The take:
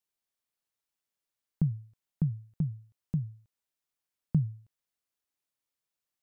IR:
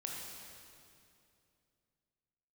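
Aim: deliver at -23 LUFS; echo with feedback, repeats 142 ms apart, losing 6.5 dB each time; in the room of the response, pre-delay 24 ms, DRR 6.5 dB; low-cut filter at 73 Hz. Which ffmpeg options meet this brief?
-filter_complex "[0:a]highpass=73,aecho=1:1:142|284|426|568|710|852:0.473|0.222|0.105|0.0491|0.0231|0.0109,asplit=2[s0][s1];[1:a]atrim=start_sample=2205,adelay=24[s2];[s1][s2]afir=irnorm=-1:irlink=0,volume=0.473[s3];[s0][s3]amix=inputs=2:normalize=0,volume=3.35"

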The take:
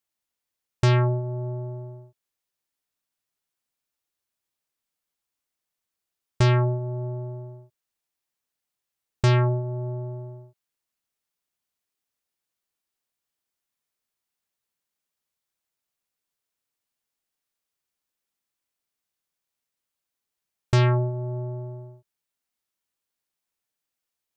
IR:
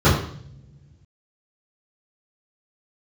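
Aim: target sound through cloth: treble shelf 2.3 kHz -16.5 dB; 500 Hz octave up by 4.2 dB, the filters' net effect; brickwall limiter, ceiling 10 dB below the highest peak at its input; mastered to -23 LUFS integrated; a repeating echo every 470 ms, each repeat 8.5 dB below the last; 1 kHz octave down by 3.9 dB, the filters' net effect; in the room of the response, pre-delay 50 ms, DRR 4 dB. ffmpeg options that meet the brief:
-filter_complex "[0:a]equalizer=f=500:t=o:g=9,equalizer=f=1000:t=o:g=-4,alimiter=limit=0.106:level=0:latency=1,aecho=1:1:470|940|1410|1880:0.376|0.143|0.0543|0.0206,asplit=2[s0][s1];[1:a]atrim=start_sample=2205,adelay=50[s2];[s1][s2]afir=irnorm=-1:irlink=0,volume=0.0447[s3];[s0][s3]amix=inputs=2:normalize=0,highshelf=f=2300:g=-16.5,volume=1.33"

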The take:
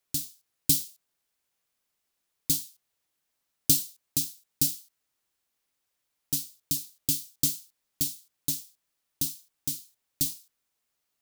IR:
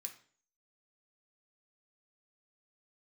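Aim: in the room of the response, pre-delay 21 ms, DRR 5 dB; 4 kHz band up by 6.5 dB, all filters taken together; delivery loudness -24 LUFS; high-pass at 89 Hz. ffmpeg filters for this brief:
-filter_complex "[0:a]highpass=89,equalizer=f=4000:t=o:g=8,asplit=2[s0][s1];[1:a]atrim=start_sample=2205,adelay=21[s2];[s1][s2]afir=irnorm=-1:irlink=0,volume=1.06[s3];[s0][s3]amix=inputs=2:normalize=0,volume=1.12"

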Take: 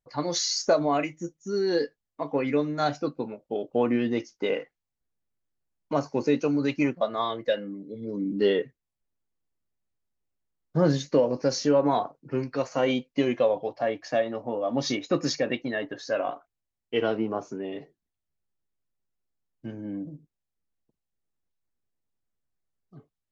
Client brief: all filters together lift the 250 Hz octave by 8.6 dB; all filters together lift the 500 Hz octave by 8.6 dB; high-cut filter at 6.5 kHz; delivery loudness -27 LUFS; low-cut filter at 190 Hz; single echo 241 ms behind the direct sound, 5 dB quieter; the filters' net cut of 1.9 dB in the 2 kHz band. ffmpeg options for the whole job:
-af "highpass=190,lowpass=6500,equalizer=f=250:t=o:g=9,equalizer=f=500:t=o:g=8,equalizer=f=2000:t=o:g=-3,aecho=1:1:241:0.562,volume=0.398"

